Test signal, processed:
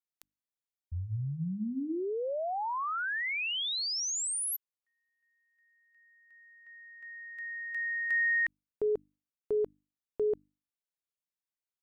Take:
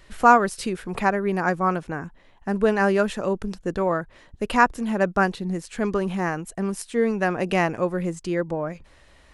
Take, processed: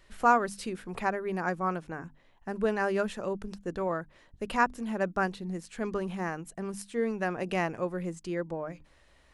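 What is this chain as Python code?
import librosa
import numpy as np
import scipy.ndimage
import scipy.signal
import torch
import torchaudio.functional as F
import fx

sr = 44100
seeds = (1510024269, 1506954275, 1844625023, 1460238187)

y = fx.hum_notches(x, sr, base_hz=50, count=6)
y = y * 10.0 ** (-8.0 / 20.0)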